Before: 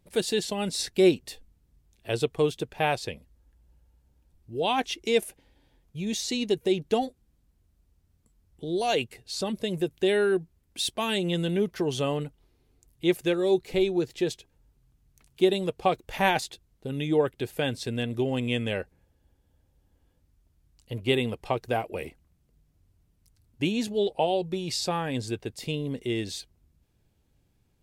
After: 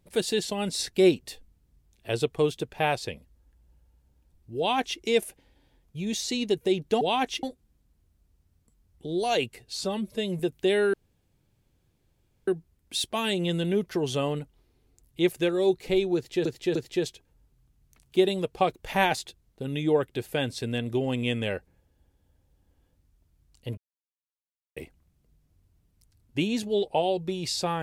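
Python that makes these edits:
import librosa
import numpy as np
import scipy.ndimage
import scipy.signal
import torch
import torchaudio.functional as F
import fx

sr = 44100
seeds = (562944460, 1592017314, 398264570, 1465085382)

y = fx.edit(x, sr, fx.duplicate(start_s=4.58, length_s=0.42, to_s=7.01),
    fx.stretch_span(start_s=9.39, length_s=0.39, factor=1.5),
    fx.insert_room_tone(at_s=10.32, length_s=1.54),
    fx.repeat(start_s=14.0, length_s=0.3, count=3),
    fx.silence(start_s=21.02, length_s=0.99), tone=tone)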